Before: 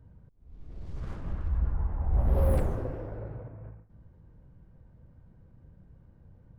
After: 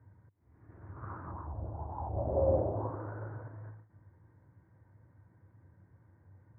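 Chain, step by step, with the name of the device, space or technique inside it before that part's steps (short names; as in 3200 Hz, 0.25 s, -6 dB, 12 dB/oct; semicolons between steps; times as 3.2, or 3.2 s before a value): envelope filter bass rig (envelope low-pass 620–2100 Hz down, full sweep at -23 dBFS; speaker cabinet 89–2000 Hz, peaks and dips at 99 Hz +8 dB, 150 Hz -6 dB, 210 Hz -6 dB, 320 Hz +5 dB, 480 Hz -3 dB, 960 Hz +6 dB); gain -4.5 dB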